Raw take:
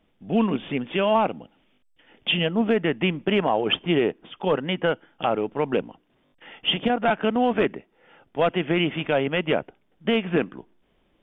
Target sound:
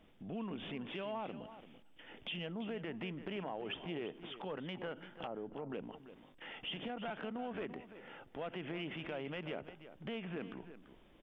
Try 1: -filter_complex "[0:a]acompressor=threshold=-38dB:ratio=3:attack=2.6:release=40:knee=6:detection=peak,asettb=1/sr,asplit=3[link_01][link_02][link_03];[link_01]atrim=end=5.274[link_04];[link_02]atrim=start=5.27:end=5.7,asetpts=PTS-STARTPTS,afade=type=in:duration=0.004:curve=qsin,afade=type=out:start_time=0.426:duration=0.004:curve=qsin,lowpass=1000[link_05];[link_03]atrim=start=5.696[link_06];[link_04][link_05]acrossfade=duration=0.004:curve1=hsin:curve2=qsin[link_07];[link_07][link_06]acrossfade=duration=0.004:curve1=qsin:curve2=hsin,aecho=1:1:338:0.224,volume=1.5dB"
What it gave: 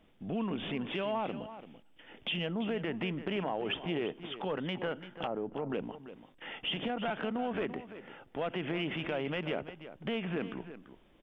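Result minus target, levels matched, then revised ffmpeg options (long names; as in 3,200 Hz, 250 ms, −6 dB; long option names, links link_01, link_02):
downward compressor: peak gain reduction −7.5 dB
-filter_complex "[0:a]acompressor=threshold=-49.5dB:ratio=3:attack=2.6:release=40:knee=6:detection=peak,asettb=1/sr,asplit=3[link_01][link_02][link_03];[link_01]atrim=end=5.274[link_04];[link_02]atrim=start=5.27:end=5.7,asetpts=PTS-STARTPTS,afade=type=in:duration=0.004:curve=qsin,afade=type=out:start_time=0.426:duration=0.004:curve=qsin,lowpass=1000[link_05];[link_03]atrim=start=5.696[link_06];[link_04][link_05]acrossfade=duration=0.004:curve1=hsin:curve2=qsin[link_07];[link_07][link_06]acrossfade=duration=0.004:curve1=qsin:curve2=hsin,aecho=1:1:338:0.224,volume=1.5dB"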